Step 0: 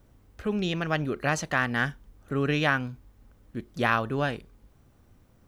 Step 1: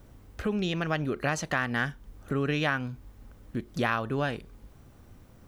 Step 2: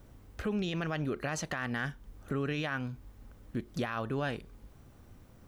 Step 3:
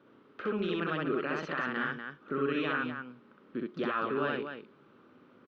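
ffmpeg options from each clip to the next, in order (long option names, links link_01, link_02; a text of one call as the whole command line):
ffmpeg -i in.wav -af "acompressor=threshold=-37dB:ratio=2,volume=6dB" out.wav
ffmpeg -i in.wav -af "alimiter=limit=-21.5dB:level=0:latency=1:release=19,volume=-2.5dB" out.wav
ffmpeg -i in.wav -filter_complex "[0:a]highpass=frequency=190:width=0.5412,highpass=frequency=190:width=1.3066,equalizer=frequency=200:width_type=q:width=4:gain=-4,equalizer=frequency=390:width_type=q:width=4:gain=4,equalizer=frequency=730:width_type=q:width=4:gain=-9,equalizer=frequency=1300:width_type=q:width=4:gain=7,equalizer=frequency=2000:width_type=q:width=4:gain=-4,lowpass=frequency=3400:width=0.5412,lowpass=frequency=3400:width=1.3066,asplit=2[link_01][link_02];[link_02]aecho=0:1:64.14|244.9:0.891|0.447[link_03];[link_01][link_03]amix=inputs=2:normalize=0" -ar 48000 -c:a libopus -b:a 64k out.opus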